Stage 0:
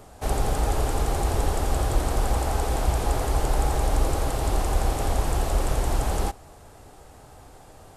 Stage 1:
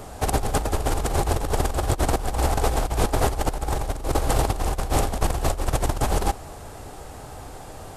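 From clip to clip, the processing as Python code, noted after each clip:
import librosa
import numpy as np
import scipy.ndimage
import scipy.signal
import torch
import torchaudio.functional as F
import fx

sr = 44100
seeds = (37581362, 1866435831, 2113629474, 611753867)

y = fx.over_compress(x, sr, threshold_db=-26.0, ratio=-0.5)
y = y * 10.0 ** (4.5 / 20.0)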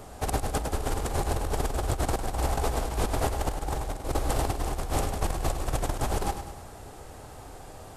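y = fx.echo_feedback(x, sr, ms=102, feedback_pct=52, wet_db=-9)
y = y * 10.0 ** (-6.0 / 20.0)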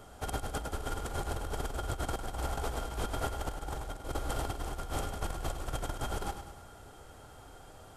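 y = fx.small_body(x, sr, hz=(1400.0, 3200.0), ring_ms=65, db=16)
y = y * 10.0 ** (-8.0 / 20.0)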